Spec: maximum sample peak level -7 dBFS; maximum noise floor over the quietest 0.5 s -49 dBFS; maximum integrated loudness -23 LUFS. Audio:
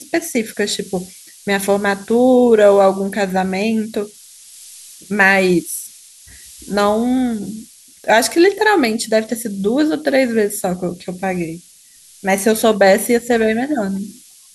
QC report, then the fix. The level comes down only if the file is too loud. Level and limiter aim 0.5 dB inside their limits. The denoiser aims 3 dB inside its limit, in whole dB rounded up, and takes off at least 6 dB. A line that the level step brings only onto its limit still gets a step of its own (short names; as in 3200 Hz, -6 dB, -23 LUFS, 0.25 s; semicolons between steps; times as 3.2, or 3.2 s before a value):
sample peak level -2.0 dBFS: fail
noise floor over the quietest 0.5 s -46 dBFS: fail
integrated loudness -16.0 LUFS: fail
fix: gain -7.5 dB